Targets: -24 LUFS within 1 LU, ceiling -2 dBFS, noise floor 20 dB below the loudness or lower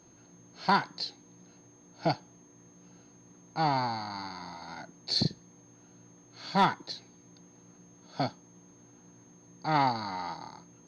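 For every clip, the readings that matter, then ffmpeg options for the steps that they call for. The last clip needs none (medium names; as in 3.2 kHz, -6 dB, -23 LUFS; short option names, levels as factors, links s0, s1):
steady tone 6.4 kHz; tone level -60 dBFS; loudness -31.5 LUFS; peak level -13.5 dBFS; loudness target -24.0 LUFS
-> -af "bandreject=f=6400:w=30"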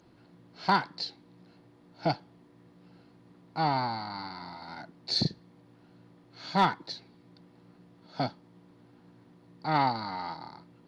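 steady tone not found; loudness -31.5 LUFS; peak level -13.5 dBFS; loudness target -24.0 LUFS
-> -af "volume=2.37"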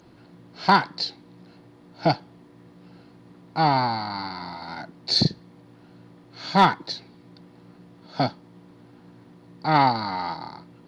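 loudness -24.0 LUFS; peak level -6.0 dBFS; noise floor -52 dBFS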